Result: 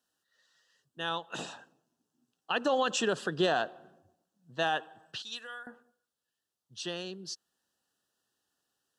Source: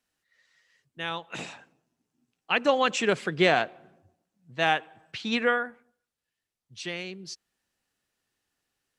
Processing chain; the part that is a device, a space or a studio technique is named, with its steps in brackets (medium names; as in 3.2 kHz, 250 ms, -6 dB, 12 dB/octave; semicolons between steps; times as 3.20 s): PA system with an anti-feedback notch (high-pass 190 Hz 6 dB/octave; Butterworth band-stop 2.2 kHz, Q 2.2; peak limiter -18.5 dBFS, peak gain reduction 9 dB); 5.22–5.67 s: pre-emphasis filter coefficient 0.97